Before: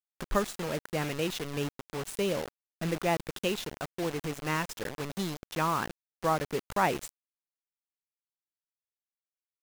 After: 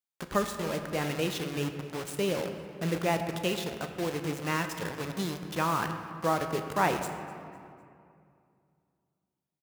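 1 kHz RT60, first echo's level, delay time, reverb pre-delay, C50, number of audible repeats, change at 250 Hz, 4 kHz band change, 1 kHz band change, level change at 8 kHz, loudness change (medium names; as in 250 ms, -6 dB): 2.3 s, -21.5 dB, 252 ms, 6 ms, 7.5 dB, 2, +2.0 dB, +0.5 dB, +1.0 dB, +0.5 dB, +1.0 dB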